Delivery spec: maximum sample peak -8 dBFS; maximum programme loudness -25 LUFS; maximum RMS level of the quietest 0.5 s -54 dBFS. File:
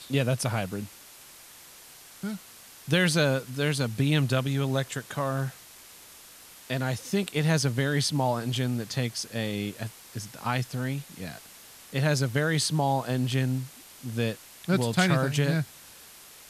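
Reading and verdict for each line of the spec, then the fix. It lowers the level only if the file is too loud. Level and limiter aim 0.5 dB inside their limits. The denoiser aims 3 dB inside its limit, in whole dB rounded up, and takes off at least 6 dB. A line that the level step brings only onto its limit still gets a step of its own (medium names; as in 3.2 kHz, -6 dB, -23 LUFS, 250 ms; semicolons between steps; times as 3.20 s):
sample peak -10.0 dBFS: pass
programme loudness -28.0 LUFS: pass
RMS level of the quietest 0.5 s -50 dBFS: fail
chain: noise reduction 7 dB, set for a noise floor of -50 dBFS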